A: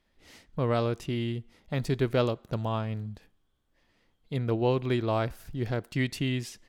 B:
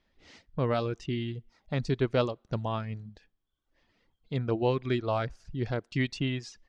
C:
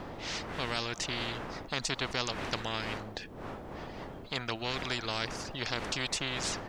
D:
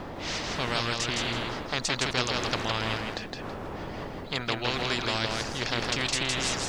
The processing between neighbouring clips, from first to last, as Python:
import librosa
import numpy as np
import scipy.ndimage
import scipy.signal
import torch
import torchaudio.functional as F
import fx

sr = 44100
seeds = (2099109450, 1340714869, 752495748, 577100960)

y1 = scipy.signal.sosfilt(scipy.signal.butter(4, 6300.0, 'lowpass', fs=sr, output='sos'), x)
y1 = fx.dereverb_blind(y1, sr, rt60_s=0.8)
y2 = fx.dmg_wind(y1, sr, seeds[0], corner_hz=290.0, level_db=-43.0)
y2 = fx.spectral_comp(y2, sr, ratio=4.0)
y2 = y2 * librosa.db_to_amplitude(-1.0)
y3 = fx.echo_feedback(y2, sr, ms=163, feedback_pct=25, wet_db=-3.0)
y3 = y3 * librosa.db_to_amplitude(4.0)